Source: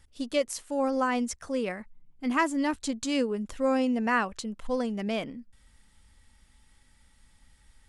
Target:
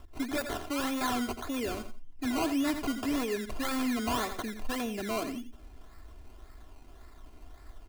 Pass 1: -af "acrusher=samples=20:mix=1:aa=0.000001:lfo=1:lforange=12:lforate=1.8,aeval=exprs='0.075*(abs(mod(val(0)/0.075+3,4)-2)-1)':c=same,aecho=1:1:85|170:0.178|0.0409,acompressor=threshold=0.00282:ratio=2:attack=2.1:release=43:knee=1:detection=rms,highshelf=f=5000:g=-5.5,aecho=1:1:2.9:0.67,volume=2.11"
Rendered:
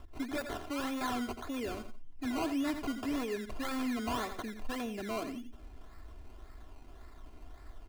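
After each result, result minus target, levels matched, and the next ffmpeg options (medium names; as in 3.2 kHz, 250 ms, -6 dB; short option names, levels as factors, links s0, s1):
compression: peak gain reduction +3.5 dB; 8 kHz band -3.5 dB
-af "acrusher=samples=20:mix=1:aa=0.000001:lfo=1:lforange=12:lforate=1.8,aeval=exprs='0.075*(abs(mod(val(0)/0.075+3,4)-2)-1)':c=same,aecho=1:1:85|170:0.178|0.0409,acompressor=threshold=0.00668:ratio=2:attack=2.1:release=43:knee=1:detection=rms,highshelf=f=5000:g=-5.5,aecho=1:1:2.9:0.67,volume=2.11"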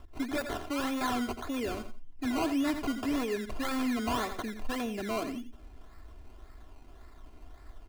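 8 kHz band -3.5 dB
-af "acrusher=samples=20:mix=1:aa=0.000001:lfo=1:lforange=12:lforate=1.8,aeval=exprs='0.075*(abs(mod(val(0)/0.075+3,4)-2)-1)':c=same,aecho=1:1:85|170:0.178|0.0409,acompressor=threshold=0.00668:ratio=2:attack=2.1:release=43:knee=1:detection=rms,aecho=1:1:2.9:0.67,volume=2.11"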